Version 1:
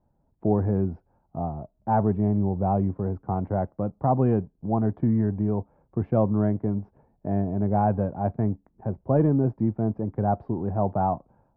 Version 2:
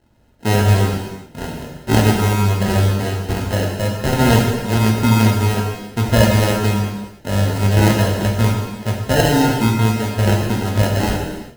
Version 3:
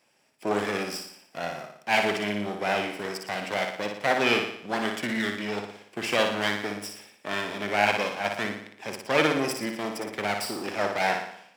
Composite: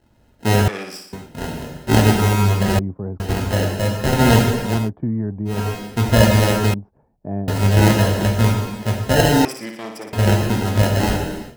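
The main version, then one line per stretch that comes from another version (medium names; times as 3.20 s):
2
0.68–1.13 s: from 3
2.79–3.20 s: from 1
4.78–5.57 s: from 1, crossfade 0.24 s
6.74–7.48 s: from 1
9.45–10.13 s: from 3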